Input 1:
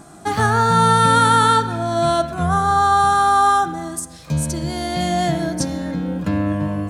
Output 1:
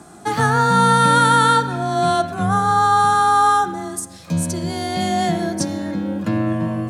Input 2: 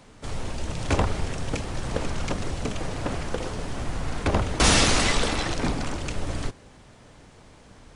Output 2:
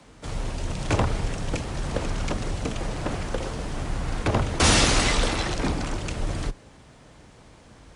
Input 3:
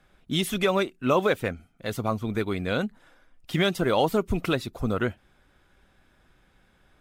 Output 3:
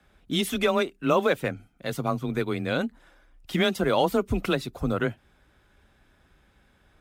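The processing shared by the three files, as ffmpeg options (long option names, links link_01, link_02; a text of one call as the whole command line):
ffmpeg -i in.wav -af "afreqshift=20" out.wav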